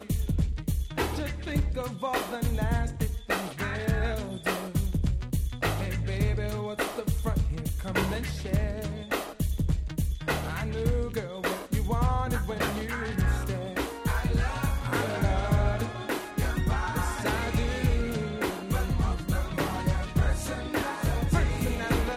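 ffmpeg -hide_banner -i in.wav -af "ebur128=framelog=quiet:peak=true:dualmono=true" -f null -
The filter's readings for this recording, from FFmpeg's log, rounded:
Integrated loudness:
  I:         -26.6 LUFS
  Threshold: -36.6 LUFS
Loudness range:
  LRA:         1.8 LU
  Threshold: -46.7 LUFS
  LRA low:   -27.5 LUFS
  LRA high:  -25.7 LUFS
True peak:
  Peak:      -11.7 dBFS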